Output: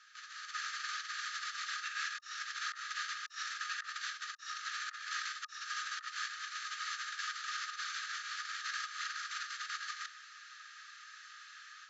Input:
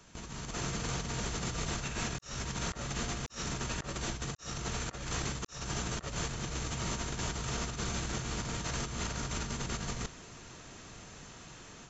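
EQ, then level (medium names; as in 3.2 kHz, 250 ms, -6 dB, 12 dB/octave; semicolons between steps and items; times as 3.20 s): rippled Chebyshev high-pass 1.2 kHz, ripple 9 dB; distance through air 78 m; treble shelf 3.1 kHz -11 dB; +11.5 dB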